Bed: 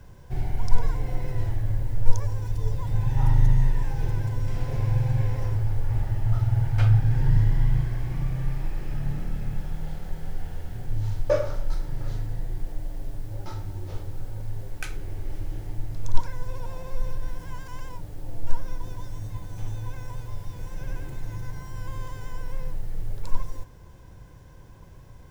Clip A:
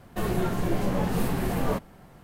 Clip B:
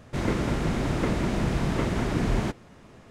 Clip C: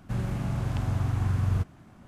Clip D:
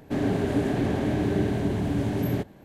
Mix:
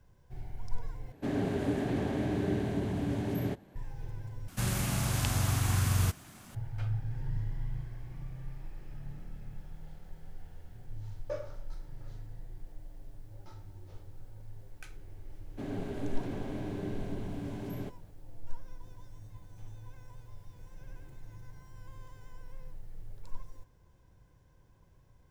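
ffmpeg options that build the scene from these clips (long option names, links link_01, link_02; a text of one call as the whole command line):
ffmpeg -i bed.wav -i cue0.wav -i cue1.wav -i cue2.wav -i cue3.wav -filter_complex "[4:a]asplit=2[link_01][link_02];[0:a]volume=-15dB[link_03];[3:a]crystalizer=i=8.5:c=0[link_04];[link_02]bandreject=frequency=1800:width=13[link_05];[link_03]asplit=3[link_06][link_07][link_08];[link_06]atrim=end=1.124[link_09];[link_01]atrim=end=2.64,asetpts=PTS-STARTPTS,volume=-6.5dB[link_10];[link_07]atrim=start=3.756:end=4.484[link_11];[link_04]atrim=end=2.07,asetpts=PTS-STARTPTS,volume=-2.5dB[link_12];[link_08]atrim=start=6.546[link_13];[link_05]atrim=end=2.64,asetpts=PTS-STARTPTS,volume=-13dB,afade=type=in:duration=0.004:curve=hsin,afade=type=out:start_time=2.636:duration=0.004:curve=hsin,adelay=15470[link_14];[link_09][link_10]acrossfade=duration=0.004:curve1=hsin:curve2=hsin[link_15];[link_15][link_11]acrossfade=duration=0.004:curve1=hsin:curve2=hsin[link_16];[link_16][link_12]acrossfade=duration=0.004:curve1=hsin:curve2=hsin[link_17];[link_17][link_13]acrossfade=duration=0.004:curve1=hsin:curve2=hsin[link_18];[link_18][link_14]amix=inputs=2:normalize=0" out.wav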